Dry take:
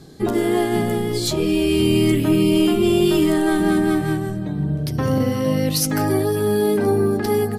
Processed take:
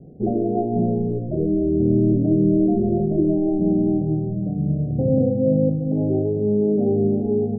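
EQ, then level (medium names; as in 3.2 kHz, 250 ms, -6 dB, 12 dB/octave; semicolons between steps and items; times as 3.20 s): rippled Chebyshev low-pass 750 Hz, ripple 6 dB; distance through air 470 m; hum notches 50/100/150/200/250/300/350 Hz; +4.5 dB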